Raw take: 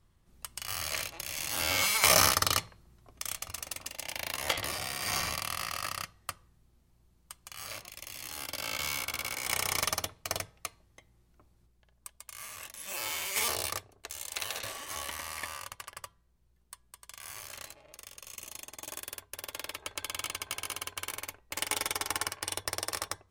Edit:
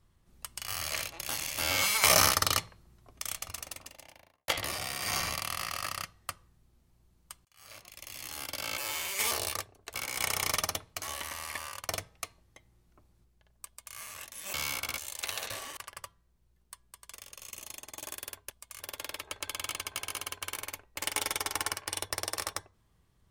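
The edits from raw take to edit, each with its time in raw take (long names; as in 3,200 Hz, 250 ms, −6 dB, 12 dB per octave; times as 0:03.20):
0:01.29–0:01.58: reverse
0:03.48–0:04.48: fade out and dull
0:07.45–0:08.17: fade in
0:08.78–0:09.23: swap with 0:12.95–0:14.11
0:12.08–0:12.38: duplicate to 0:19.35
0:14.90–0:15.77: move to 0:10.31
0:17.14–0:17.99: remove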